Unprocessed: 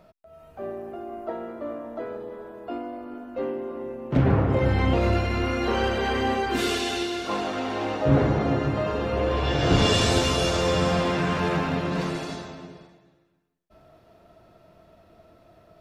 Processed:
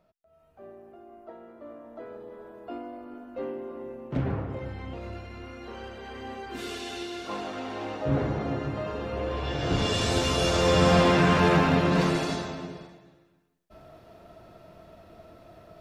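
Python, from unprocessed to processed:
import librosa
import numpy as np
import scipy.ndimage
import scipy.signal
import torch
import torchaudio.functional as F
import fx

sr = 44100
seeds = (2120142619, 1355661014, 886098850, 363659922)

y = fx.gain(x, sr, db=fx.line((1.41, -13.0), (2.49, -5.0), (4.0, -5.0), (4.79, -16.5), (6.03, -16.5), (7.21, -6.5), (9.89, -6.5), (10.98, 4.0)))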